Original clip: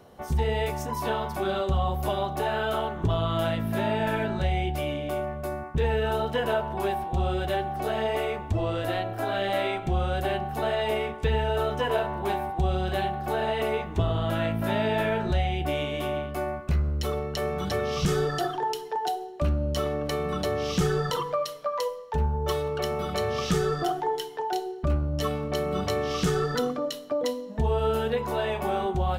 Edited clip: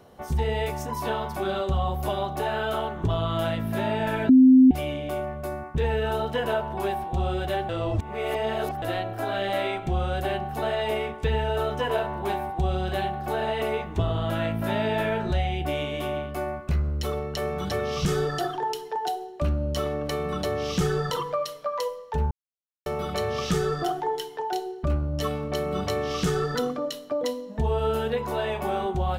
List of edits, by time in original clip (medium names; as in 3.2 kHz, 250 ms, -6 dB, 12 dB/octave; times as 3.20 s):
4.29–4.71 s: bleep 259 Hz -10 dBFS
7.69–8.82 s: reverse
22.31–22.86 s: mute